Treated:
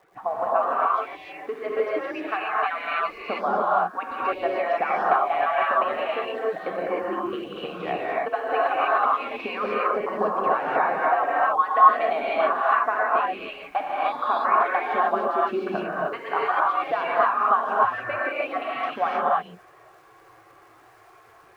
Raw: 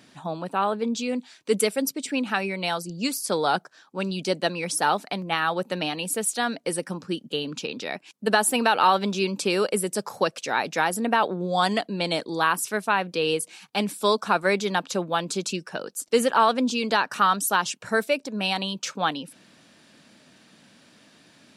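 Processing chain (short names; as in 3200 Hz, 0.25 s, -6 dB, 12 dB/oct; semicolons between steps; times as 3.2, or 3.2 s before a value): median-filter separation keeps percussive; LPF 2100 Hz 24 dB/oct; compressor, threshold -30 dBFS, peak gain reduction 13 dB; small resonant body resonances 740/1100 Hz, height 13 dB, ringing for 25 ms; crackle 240/s -55 dBFS; non-linear reverb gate 0.33 s rising, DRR -7 dB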